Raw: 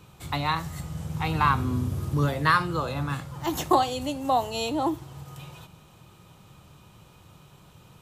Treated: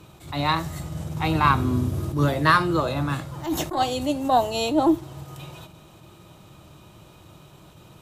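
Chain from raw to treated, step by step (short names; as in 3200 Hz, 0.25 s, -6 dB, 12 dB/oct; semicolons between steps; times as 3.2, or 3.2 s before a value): small resonant body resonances 330/620/3800 Hz, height 8 dB, ringing for 40 ms; added harmonics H 2 -15 dB, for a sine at -4 dBFS; attack slew limiter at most 130 dB/s; gain +3 dB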